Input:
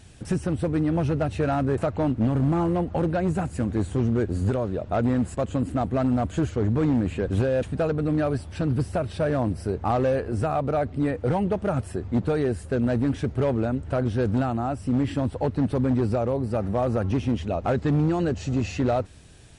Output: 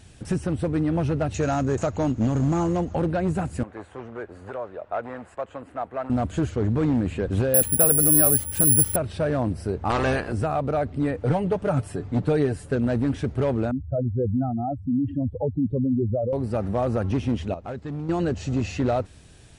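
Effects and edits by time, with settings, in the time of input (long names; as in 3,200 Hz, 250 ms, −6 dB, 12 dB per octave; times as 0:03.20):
0:01.34–0:02.95: low-pass with resonance 6,700 Hz, resonance Q 11
0:03.63–0:06.10: three-way crossover with the lows and the highs turned down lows −21 dB, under 510 Hz, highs −16 dB, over 2,400 Hz
0:07.54–0:08.96: bad sample-rate conversion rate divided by 4×, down none, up zero stuff
0:09.89–0:10.31: ceiling on every frequency bin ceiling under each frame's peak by 19 dB
0:11.21–0:12.75: comb filter 6.9 ms, depth 52%
0:13.71–0:16.33: expanding power law on the bin magnitudes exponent 2.6
0:17.54–0:18.09: clip gain −10 dB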